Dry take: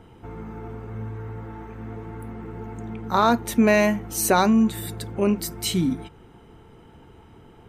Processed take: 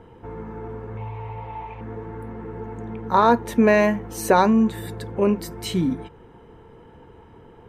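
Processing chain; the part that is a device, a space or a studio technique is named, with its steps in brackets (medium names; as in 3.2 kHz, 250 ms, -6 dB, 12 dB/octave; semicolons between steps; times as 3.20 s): inside a helmet (treble shelf 4.2 kHz -9.5 dB; small resonant body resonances 490/960/1700 Hz, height 8 dB, ringing for 25 ms); 0.97–1.81 s: FFT filter 120 Hz 0 dB, 290 Hz -12 dB, 880 Hz +8 dB, 1.6 kHz -9 dB, 2.4 kHz +14 dB, 9.8 kHz -8 dB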